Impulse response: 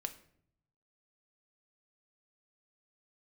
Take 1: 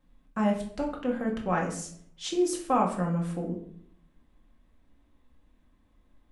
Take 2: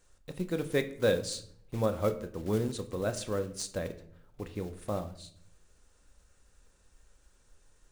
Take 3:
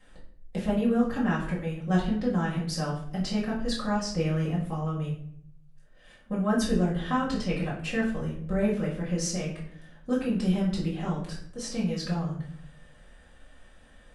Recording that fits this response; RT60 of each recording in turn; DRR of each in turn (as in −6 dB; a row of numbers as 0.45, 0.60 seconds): 2; 0.65, 0.65, 0.65 seconds; −1.0, 7.5, −8.5 decibels